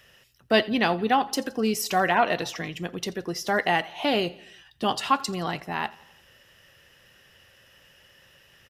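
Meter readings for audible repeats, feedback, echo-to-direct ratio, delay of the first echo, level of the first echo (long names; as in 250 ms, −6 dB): 3, 57%, −20.5 dB, 85 ms, −22.0 dB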